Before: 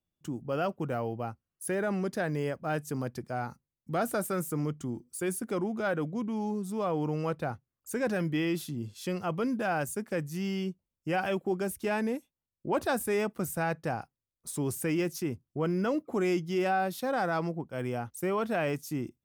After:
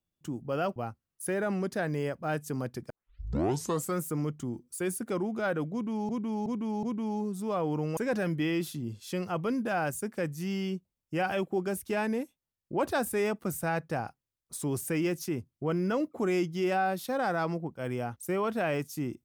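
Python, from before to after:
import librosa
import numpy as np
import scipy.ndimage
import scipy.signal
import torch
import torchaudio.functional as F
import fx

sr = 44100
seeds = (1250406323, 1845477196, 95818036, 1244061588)

y = fx.edit(x, sr, fx.cut(start_s=0.76, length_s=0.41),
    fx.tape_start(start_s=3.31, length_s=1.08),
    fx.repeat(start_s=6.13, length_s=0.37, count=4),
    fx.cut(start_s=7.27, length_s=0.64), tone=tone)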